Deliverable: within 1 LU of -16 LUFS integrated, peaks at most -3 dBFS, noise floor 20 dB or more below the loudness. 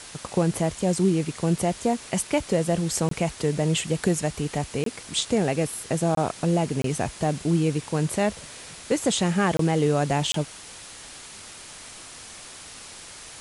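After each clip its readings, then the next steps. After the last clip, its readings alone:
dropouts 6; longest dropout 23 ms; noise floor -43 dBFS; noise floor target -45 dBFS; loudness -25.0 LUFS; peak -10.0 dBFS; loudness target -16.0 LUFS
-> interpolate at 3.09/4.84/6.15/6.82/9.57/10.32, 23 ms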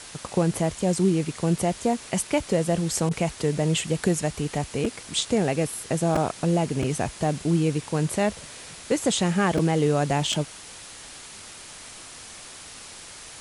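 dropouts 0; noise floor -43 dBFS; noise floor target -45 dBFS
-> noise print and reduce 6 dB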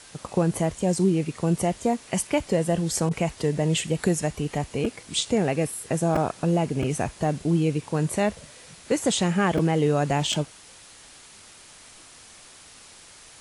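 noise floor -49 dBFS; loudness -25.0 LUFS; peak -10.5 dBFS; loudness target -16.0 LUFS
-> gain +9 dB; limiter -3 dBFS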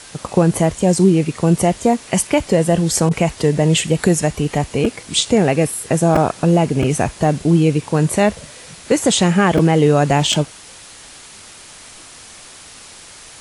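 loudness -16.0 LUFS; peak -3.0 dBFS; noise floor -40 dBFS

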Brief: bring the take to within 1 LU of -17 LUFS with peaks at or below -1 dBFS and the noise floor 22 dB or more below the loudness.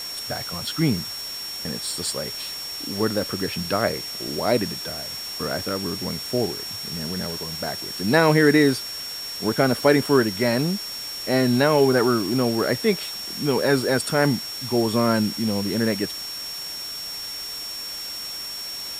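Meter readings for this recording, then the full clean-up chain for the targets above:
steady tone 5500 Hz; tone level -31 dBFS; noise floor -33 dBFS; noise floor target -46 dBFS; loudness -23.5 LUFS; peak -4.0 dBFS; loudness target -17.0 LUFS
-> notch 5500 Hz, Q 30; noise print and reduce 13 dB; gain +6.5 dB; limiter -1 dBFS

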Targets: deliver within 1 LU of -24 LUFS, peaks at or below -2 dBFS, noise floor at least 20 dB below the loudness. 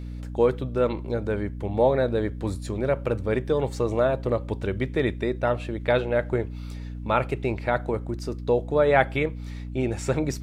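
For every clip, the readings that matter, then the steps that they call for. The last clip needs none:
hum 60 Hz; harmonics up to 300 Hz; hum level -32 dBFS; loudness -25.5 LUFS; peak -4.5 dBFS; loudness target -24.0 LUFS
-> notches 60/120/180/240/300 Hz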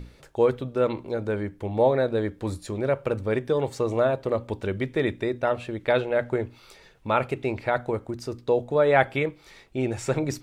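hum none; loudness -26.0 LUFS; peak -4.5 dBFS; loudness target -24.0 LUFS
-> gain +2 dB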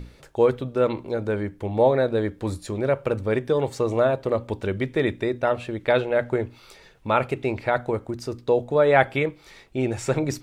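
loudness -24.0 LUFS; peak -2.5 dBFS; noise floor -52 dBFS

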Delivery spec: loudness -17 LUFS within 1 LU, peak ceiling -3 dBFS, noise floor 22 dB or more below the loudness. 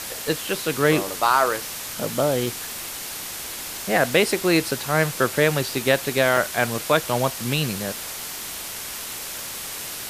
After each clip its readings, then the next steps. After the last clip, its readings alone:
dropouts 5; longest dropout 1.9 ms; noise floor -33 dBFS; noise floor target -45 dBFS; loudness -23.0 LUFS; peak -5.0 dBFS; loudness target -17.0 LUFS
-> interpolate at 1.21/2.46/4.71/5.3/6.37, 1.9 ms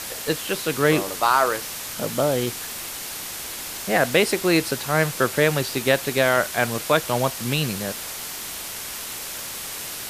dropouts 0; noise floor -33 dBFS; noise floor target -45 dBFS
-> denoiser 12 dB, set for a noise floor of -33 dBFS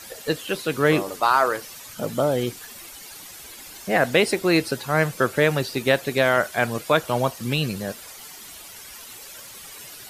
noise floor -42 dBFS; noise floor target -45 dBFS
-> denoiser 6 dB, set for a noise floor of -42 dBFS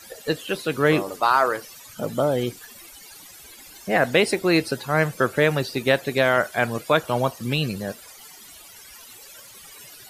noise floor -45 dBFS; loudness -22.5 LUFS; peak -5.5 dBFS; loudness target -17.0 LUFS
-> gain +5.5 dB; limiter -3 dBFS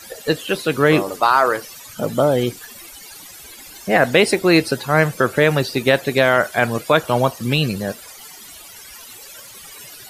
loudness -17.5 LUFS; peak -3.0 dBFS; noise floor -40 dBFS

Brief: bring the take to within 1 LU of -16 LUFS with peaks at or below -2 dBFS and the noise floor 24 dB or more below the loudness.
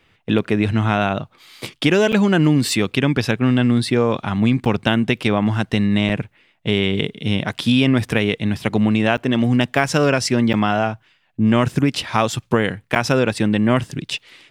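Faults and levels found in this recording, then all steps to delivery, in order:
dropouts 6; longest dropout 8.0 ms; loudness -18.5 LUFS; peak -1.5 dBFS; loudness target -16.0 LUFS
-> interpolate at 2.12/4.65/6.09/9.17/10.53/12.95, 8 ms; gain +2.5 dB; limiter -2 dBFS

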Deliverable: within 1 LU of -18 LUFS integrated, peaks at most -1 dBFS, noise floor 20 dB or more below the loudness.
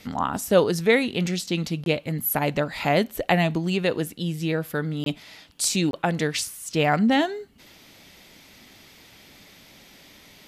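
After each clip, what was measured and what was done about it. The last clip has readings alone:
dropouts 3; longest dropout 22 ms; loudness -24.0 LUFS; peak -5.5 dBFS; loudness target -18.0 LUFS
-> interpolate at 1.84/5.04/5.91, 22 ms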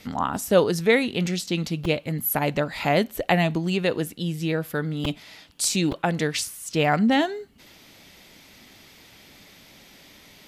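dropouts 0; loudness -24.0 LUFS; peak -5.5 dBFS; loudness target -18.0 LUFS
-> gain +6 dB; limiter -1 dBFS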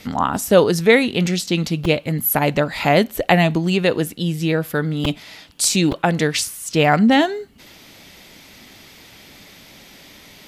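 loudness -18.0 LUFS; peak -1.0 dBFS; noise floor -45 dBFS

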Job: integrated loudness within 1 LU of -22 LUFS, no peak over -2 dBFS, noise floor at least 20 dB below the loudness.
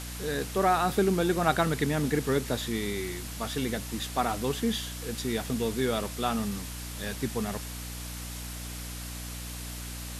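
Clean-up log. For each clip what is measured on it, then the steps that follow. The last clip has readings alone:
hum 60 Hz; harmonics up to 300 Hz; hum level -38 dBFS; noise floor -39 dBFS; noise floor target -51 dBFS; loudness -30.5 LUFS; peak -11.0 dBFS; loudness target -22.0 LUFS
-> de-hum 60 Hz, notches 5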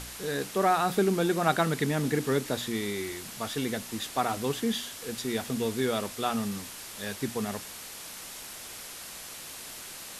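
hum none; noise floor -43 dBFS; noise floor target -51 dBFS
-> denoiser 8 dB, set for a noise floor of -43 dBFS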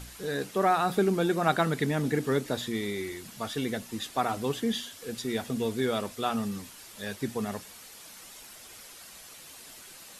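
noise floor -49 dBFS; noise floor target -50 dBFS
-> denoiser 6 dB, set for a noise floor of -49 dBFS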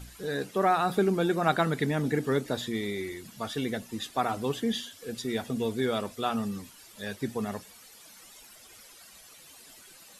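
noise floor -53 dBFS; loudness -30.0 LUFS; peak -11.0 dBFS; loudness target -22.0 LUFS
-> gain +8 dB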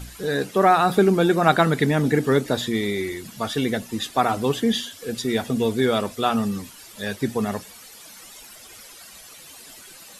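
loudness -22.0 LUFS; peak -3.0 dBFS; noise floor -45 dBFS

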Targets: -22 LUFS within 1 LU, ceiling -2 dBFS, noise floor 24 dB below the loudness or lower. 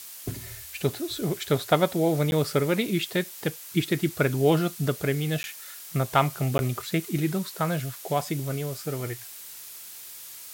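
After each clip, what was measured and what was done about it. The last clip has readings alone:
dropouts 3; longest dropout 11 ms; noise floor -43 dBFS; noise floor target -51 dBFS; loudness -27.0 LUFS; peak -5.0 dBFS; loudness target -22.0 LUFS
-> interpolate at 2.31/5.43/6.58, 11 ms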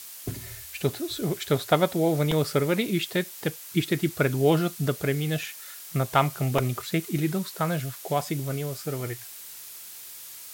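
dropouts 0; noise floor -43 dBFS; noise floor target -51 dBFS
-> denoiser 8 dB, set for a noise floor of -43 dBFS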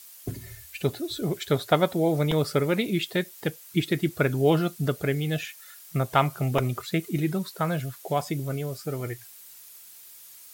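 noise floor -48 dBFS; noise floor target -51 dBFS
-> denoiser 6 dB, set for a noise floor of -48 dBFS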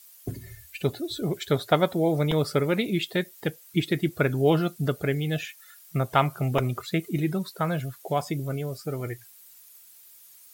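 noise floor -52 dBFS; loudness -27.0 LUFS; peak -5.0 dBFS; loudness target -22.0 LUFS
-> gain +5 dB; limiter -2 dBFS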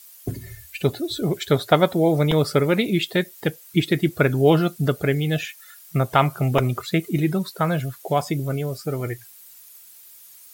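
loudness -22.0 LUFS; peak -2.0 dBFS; noise floor -47 dBFS

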